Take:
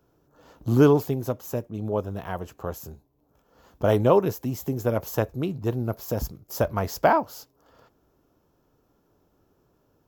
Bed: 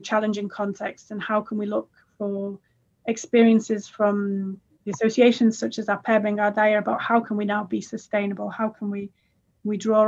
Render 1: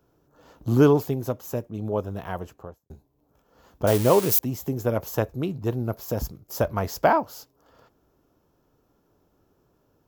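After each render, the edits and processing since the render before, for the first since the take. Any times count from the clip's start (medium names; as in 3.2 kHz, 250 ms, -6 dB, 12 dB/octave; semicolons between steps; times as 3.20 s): 2.37–2.90 s: studio fade out; 3.87–4.39 s: zero-crossing glitches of -16.5 dBFS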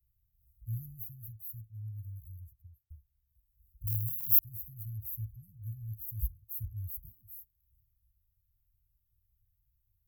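inverse Chebyshev band-stop 380–3200 Hz, stop band 80 dB; peaking EQ 110 Hz +9 dB 0.28 oct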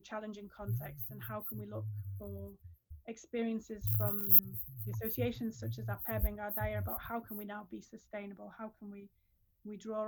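add bed -20.5 dB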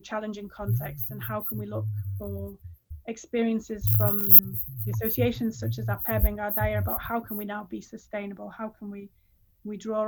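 trim +10.5 dB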